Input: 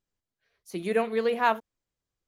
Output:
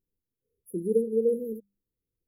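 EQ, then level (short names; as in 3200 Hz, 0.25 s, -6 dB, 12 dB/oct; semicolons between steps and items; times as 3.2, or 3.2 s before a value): brick-wall FIR band-stop 530–9900 Hz; notches 50/100/150/200 Hz; +2.0 dB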